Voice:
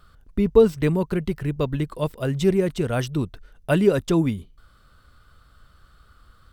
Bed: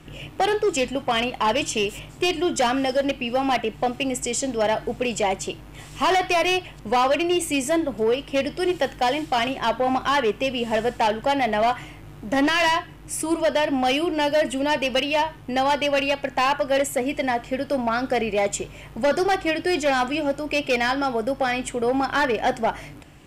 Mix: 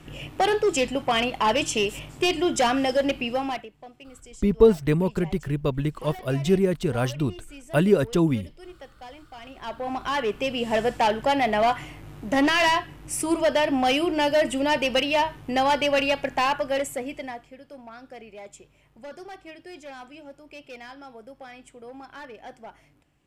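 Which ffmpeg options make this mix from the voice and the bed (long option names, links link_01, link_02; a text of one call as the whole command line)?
ffmpeg -i stem1.wav -i stem2.wav -filter_complex "[0:a]adelay=4050,volume=-1dB[link_01];[1:a]volume=20.5dB,afade=type=out:start_time=3.21:duration=0.49:silence=0.0891251,afade=type=in:start_time=9.41:duration=1.38:silence=0.0891251,afade=type=out:start_time=16.19:duration=1.35:silence=0.105925[link_02];[link_01][link_02]amix=inputs=2:normalize=0" out.wav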